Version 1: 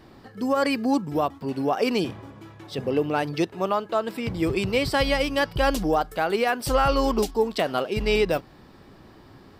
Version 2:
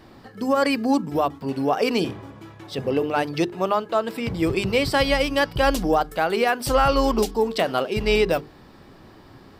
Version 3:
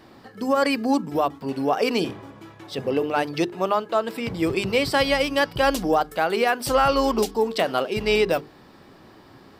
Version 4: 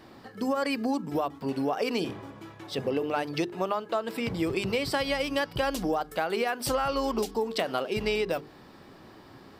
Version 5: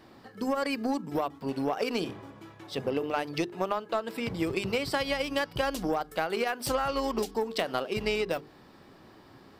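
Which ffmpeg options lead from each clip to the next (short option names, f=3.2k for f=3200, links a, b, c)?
-af "bandreject=f=50:t=h:w=6,bandreject=f=100:t=h:w=6,bandreject=f=150:t=h:w=6,bandreject=f=200:t=h:w=6,bandreject=f=250:t=h:w=6,bandreject=f=300:t=h:w=6,bandreject=f=350:t=h:w=6,bandreject=f=400:t=h:w=6,bandreject=f=450:t=h:w=6,volume=2.5dB"
-af "lowshelf=f=92:g=-11"
-af "acompressor=threshold=-23dB:ratio=6,volume=-1.5dB"
-af "aeval=exprs='0.251*(cos(1*acos(clip(val(0)/0.251,-1,1)))-cos(1*PI/2))+0.0112*(cos(7*acos(clip(val(0)/0.251,-1,1)))-cos(7*PI/2))':c=same"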